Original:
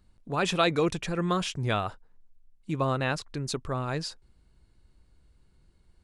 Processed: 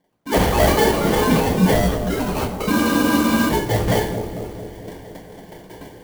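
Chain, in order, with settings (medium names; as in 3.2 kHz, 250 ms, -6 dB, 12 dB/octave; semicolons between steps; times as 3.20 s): formants replaced by sine waves; recorder AGC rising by 25 dB/s; treble shelf 2.2 kHz +9.5 dB; in parallel at -0.5 dB: compression, threshold -31 dBFS, peak gain reduction 15.5 dB; on the sum: sample-and-hold 34×; on a send: bucket-brigade echo 225 ms, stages 1024, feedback 66%, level -8 dB; on the sum: two-slope reverb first 0.45 s, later 4 s, from -21 dB, DRR -3.5 dB; ever faster or slower copies 95 ms, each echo +5 st, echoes 2, each echo -6 dB; spectral freeze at 2.73 s, 0.76 s; sampling jitter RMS 0.03 ms; trim -1.5 dB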